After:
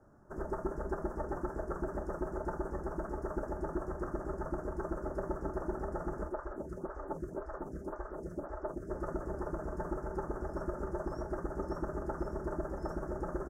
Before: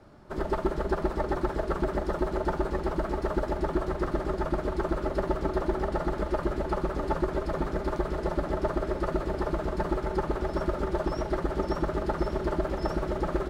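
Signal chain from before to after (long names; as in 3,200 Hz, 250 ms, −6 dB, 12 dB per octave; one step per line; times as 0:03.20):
Chebyshev band-stop filter 1,600–6,100 Hz, order 3
double-tracking delay 28 ms −11 dB
0:06.29–0:08.90: phaser with staggered stages 1.9 Hz
level −8.5 dB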